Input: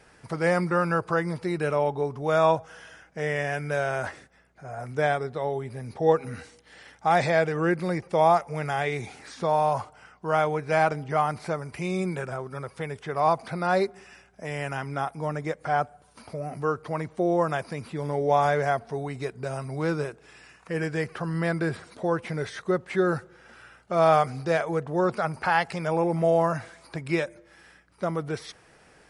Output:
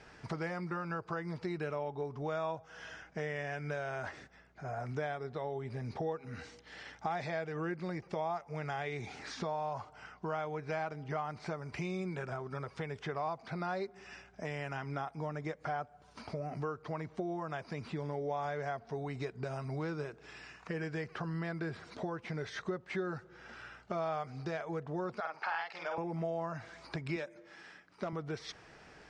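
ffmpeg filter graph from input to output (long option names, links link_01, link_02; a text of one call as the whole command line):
ffmpeg -i in.wav -filter_complex "[0:a]asettb=1/sr,asplit=3[link_01][link_02][link_03];[link_01]atrim=end=25.204[link_04];[link_02]atrim=start=25.2:end=25.98,asetpts=PTS-STARTPTS,afade=type=in:duration=0.004:curve=qsin,afade=type=out:start_time=0.776:duration=0.004:curve=qsin,highpass=670,lowpass=4800,bandreject=frequency=2000:width=28,asplit=2[link_05][link_06];[link_06]adelay=48,volume=-3dB[link_07];[link_05][link_07]amix=inputs=2:normalize=0,atrim=end_sample=34398[link_08];[link_03]atrim=start=25.976[link_09];[link_04][link_08]acrossfade=duration=0.004:curve1=hsin:curve2=qsin[link_10];[link_10][link_09]acrossfade=duration=0.004:curve1=qsin:curve2=hsin,asettb=1/sr,asplit=3[link_11][link_12][link_13];[link_11]atrim=end=27.164[link_14];[link_12]atrim=start=27.16:end=28.13,asetpts=PTS-STARTPTS,afade=type=in:duration=0.004:curve=qsin,afade=type=out:start_time=0.966:duration=0.004:curve=qsin,highpass=170,asoftclip=type=hard:threshold=-19.5dB[link_15];[link_13]atrim=start=28.126[link_16];[link_14][link_15]acrossfade=duration=0.004:curve1=hsin:curve2=qsin[link_17];[link_17][link_16]acrossfade=duration=0.004:curve1=qsin:curve2=hsin,acompressor=threshold=-36dB:ratio=4,lowpass=frequency=6500:width=0.5412,lowpass=frequency=6500:width=1.3066,bandreject=frequency=520:width=12" out.wav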